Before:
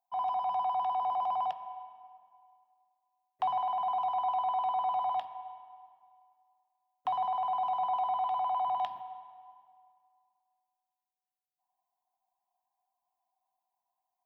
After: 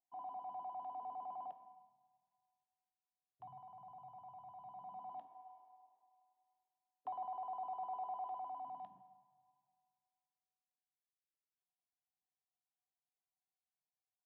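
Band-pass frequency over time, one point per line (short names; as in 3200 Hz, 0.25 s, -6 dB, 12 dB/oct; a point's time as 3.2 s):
band-pass, Q 2.5
1.6 s 300 Hz
2.04 s 120 Hz
4.53 s 120 Hz
5.52 s 380 Hz
8.3 s 380 Hz
9.3 s 140 Hz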